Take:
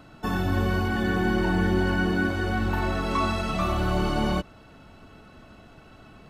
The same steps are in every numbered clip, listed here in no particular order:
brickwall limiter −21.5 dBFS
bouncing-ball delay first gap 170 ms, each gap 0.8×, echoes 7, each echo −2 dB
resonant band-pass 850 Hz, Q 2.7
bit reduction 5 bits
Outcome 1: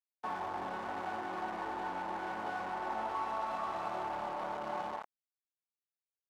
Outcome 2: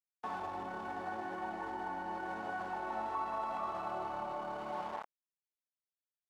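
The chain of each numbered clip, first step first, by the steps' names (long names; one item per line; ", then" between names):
bouncing-ball delay, then brickwall limiter, then bit reduction, then resonant band-pass
bouncing-ball delay, then bit reduction, then brickwall limiter, then resonant band-pass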